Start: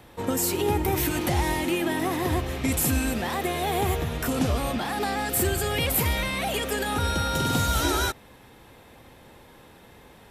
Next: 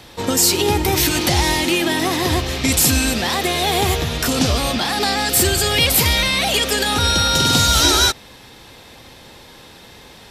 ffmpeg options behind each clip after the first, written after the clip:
-af "equalizer=f=4.8k:t=o:w=1.5:g=12.5,volume=6dB"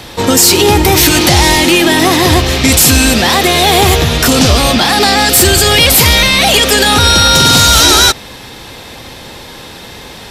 -filter_complex "[0:a]apsyclip=12dB,asplit=2[a][b];[b]asoftclip=type=tanh:threshold=-16dB,volume=-11dB[c];[a][c]amix=inputs=2:normalize=0,volume=-2dB"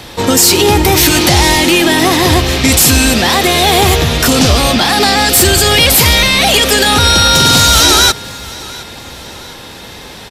-af "aecho=1:1:713|1426|2139:0.0891|0.041|0.0189,volume=-1dB"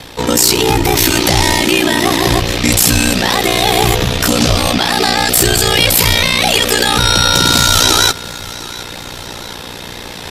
-af "areverse,acompressor=mode=upward:threshold=-17dB:ratio=2.5,areverse,aeval=exprs='val(0)*sin(2*PI*30*n/s)':c=same"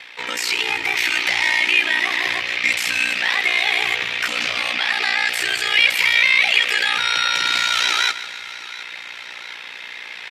-af "bandpass=f=2.2k:t=q:w=3.2:csg=0,aecho=1:1:151|302|453|604|755:0.178|0.0925|0.0481|0.025|0.013,volume=3.5dB"

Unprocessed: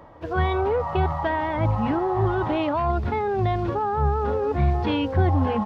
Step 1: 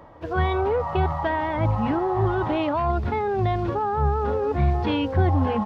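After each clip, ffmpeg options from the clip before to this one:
-af anull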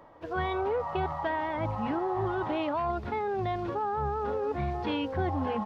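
-af "equalizer=f=64:t=o:w=2.6:g=-9,volume=-5.5dB"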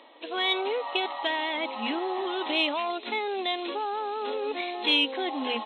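-af "afftfilt=real='re*between(b*sr/4096,220,4200)':imag='im*between(b*sr/4096,220,4200)':win_size=4096:overlap=0.75,aexciter=amount=6.3:drive=8.1:freq=2.3k"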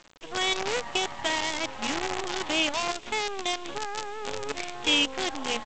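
-af "aresample=8000,aresample=44100,aresample=16000,acrusher=bits=5:dc=4:mix=0:aa=0.000001,aresample=44100"

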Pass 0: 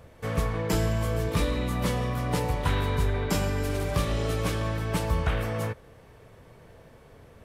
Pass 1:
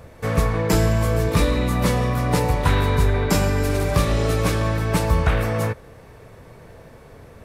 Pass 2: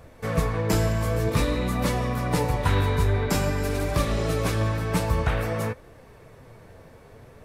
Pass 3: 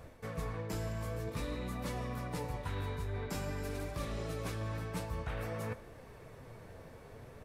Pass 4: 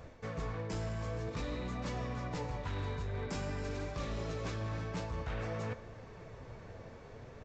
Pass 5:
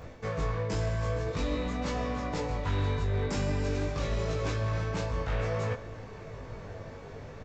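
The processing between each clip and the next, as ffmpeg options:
-af "equalizer=f=3.1k:t=o:w=0.22:g=-5.5,volume=7.5dB"
-af "flanger=delay=2.6:depth=9.2:regen=61:speed=0.51:shape=triangular"
-filter_complex "[0:a]asplit=2[a][b];[b]adelay=116.6,volume=-25dB,highshelf=f=4k:g=-2.62[c];[a][c]amix=inputs=2:normalize=0,areverse,acompressor=threshold=-34dB:ratio=4,areverse,volume=-3.5dB"
-filter_complex "[0:a]aresample=16000,volume=34dB,asoftclip=hard,volume=-34dB,aresample=44100,asplit=2[a][b];[b]adelay=1224,volume=-17dB,highshelf=f=4k:g=-27.6[c];[a][c]amix=inputs=2:normalize=0,volume=1dB"
-filter_complex "[0:a]asplit=2[a][b];[b]adelay=20,volume=-3dB[c];[a][c]amix=inputs=2:normalize=0,volume=5dB"

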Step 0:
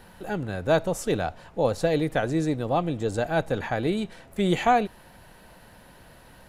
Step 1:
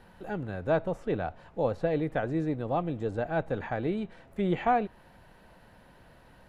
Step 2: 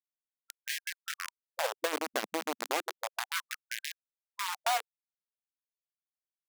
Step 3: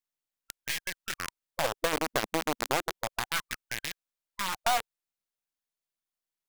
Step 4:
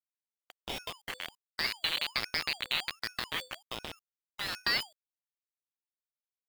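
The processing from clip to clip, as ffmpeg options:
-filter_complex "[0:a]acrossover=split=3100[a][b];[b]acompressor=threshold=-53dB:ratio=6[c];[a][c]amix=inputs=2:normalize=0,highshelf=f=4.8k:g=-11.5,volume=-4.5dB"
-af "acrusher=bits=3:mix=0:aa=0.000001,acompressor=threshold=-25dB:ratio=6,afftfilt=real='re*gte(b*sr/1024,210*pow(1600/210,0.5+0.5*sin(2*PI*0.32*pts/sr)))':imag='im*gte(b*sr/1024,210*pow(1600/210,0.5+0.5*sin(2*PI*0.32*pts/sr)))':win_size=1024:overlap=0.75"
-af "aeval=exprs='if(lt(val(0),0),0.447*val(0),val(0))':c=same,volume=5.5dB"
-af "lowpass=f=3.4k:t=q:w=0.5098,lowpass=f=3.4k:t=q:w=0.6013,lowpass=f=3.4k:t=q:w=0.9,lowpass=f=3.4k:t=q:w=2.563,afreqshift=-4000,acrusher=bits=7:dc=4:mix=0:aa=0.000001,aeval=exprs='val(0)*sin(2*PI*1000*n/s+1000*0.5/1.3*sin(2*PI*1.3*n/s))':c=same"

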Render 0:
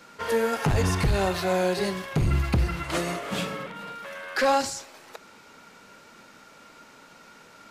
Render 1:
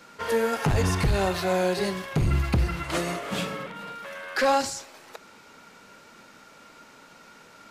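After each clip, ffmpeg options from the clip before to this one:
-af anull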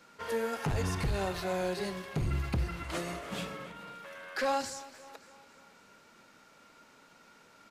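-af "aecho=1:1:283|566|849|1132:0.126|0.0642|0.0327|0.0167,volume=-8.5dB"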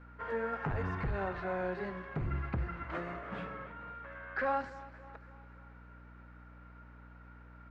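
-af "lowpass=f=1.6k:t=q:w=1.8,aeval=exprs='val(0)+0.00355*(sin(2*PI*60*n/s)+sin(2*PI*2*60*n/s)/2+sin(2*PI*3*60*n/s)/3+sin(2*PI*4*60*n/s)/4+sin(2*PI*5*60*n/s)/5)':c=same,volume=-4dB"

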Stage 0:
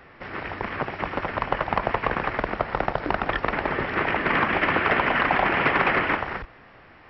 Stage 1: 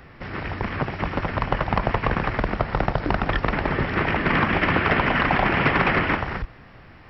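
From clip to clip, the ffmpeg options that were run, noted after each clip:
-af "bass=f=250:g=10,treble=f=4k:g=7"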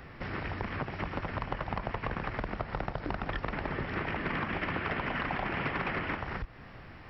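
-af "acompressor=threshold=-32dB:ratio=3,volume=-2dB"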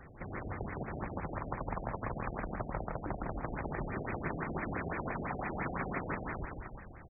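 -af "aecho=1:1:160|304|433.6|550.2|655.2:0.631|0.398|0.251|0.158|0.1,afftfilt=real='re*lt(b*sr/1024,750*pow(2600/750,0.5+0.5*sin(2*PI*5.9*pts/sr)))':imag='im*lt(b*sr/1024,750*pow(2600/750,0.5+0.5*sin(2*PI*5.9*pts/sr)))':win_size=1024:overlap=0.75,volume=-4.5dB"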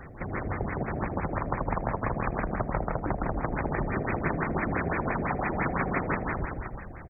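-af "aecho=1:1:80:0.112,volume=8.5dB"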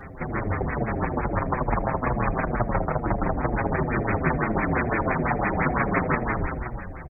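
-filter_complex "[0:a]asplit=2[a][b];[b]adelay=6.9,afreqshift=-2.2[c];[a][c]amix=inputs=2:normalize=1,volume=8dB"

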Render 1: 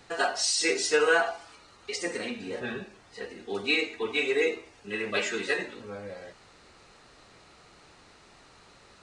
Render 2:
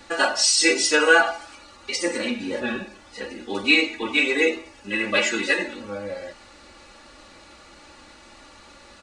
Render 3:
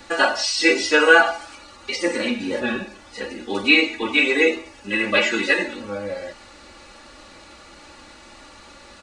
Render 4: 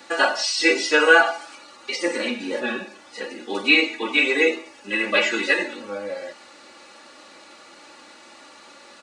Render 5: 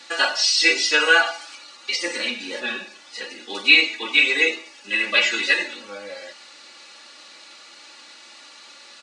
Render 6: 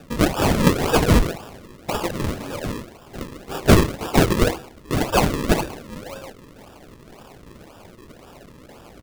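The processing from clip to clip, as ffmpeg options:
-af "aecho=1:1:3.5:0.82,volume=5.5dB"
-filter_complex "[0:a]acrossover=split=4600[a][b];[b]acompressor=threshold=-41dB:ratio=4:attack=1:release=60[c];[a][c]amix=inputs=2:normalize=0,volume=3dB"
-af "highpass=260,volume=-1dB"
-af "equalizer=f=4.3k:t=o:w=2.9:g=14,volume=-8dB"
-af "acrusher=samples=41:mix=1:aa=0.000001:lfo=1:lforange=41:lforate=1.9,volume=1dB"

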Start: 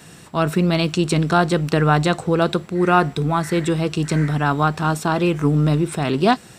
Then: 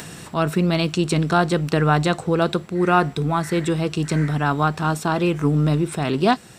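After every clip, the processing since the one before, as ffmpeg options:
-af "acompressor=mode=upward:threshold=-27dB:ratio=2.5,volume=-1.5dB"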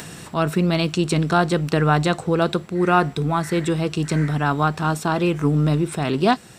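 -af anull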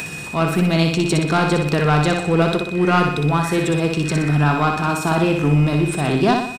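-filter_complex "[0:a]aeval=exprs='val(0)+0.0355*sin(2*PI*2500*n/s)':c=same,asoftclip=type=tanh:threshold=-12dB,asplit=2[a][b];[b]aecho=0:1:61|122|183|244|305|366|427:0.596|0.304|0.155|0.079|0.0403|0.0206|0.0105[c];[a][c]amix=inputs=2:normalize=0,volume=2.5dB"

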